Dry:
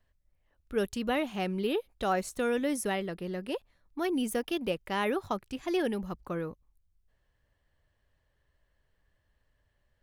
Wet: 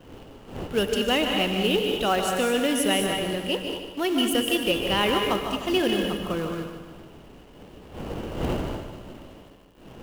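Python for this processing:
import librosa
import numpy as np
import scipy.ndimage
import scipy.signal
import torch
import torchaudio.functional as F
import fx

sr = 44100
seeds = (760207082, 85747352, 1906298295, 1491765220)

p1 = fx.dmg_wind(x, sr, seeds[0], corner_hz=430.0, level_db=-45.0)
p2 = fx.high_shelf(p1, sr, hz=8600.0, db=5.5)
p3 = fx.rev_gated(p2, sr, seeds[1], gate_ms=250, shape='rising', drr_db=4.0)
p4 = fx.quant_companded(p3, sr, bits=4)
p5 = p3 + (p4 * librosa.db_to_amplitude(-3.5))
p6 = fx.peak_eq(p5, sr, hz=2900.0, db=12.0, octaves=0.25)
y = p6 + fx.echo_feedback(p6, sr, ms=150, feedback_pct=52, wet_db=-9, dry=0)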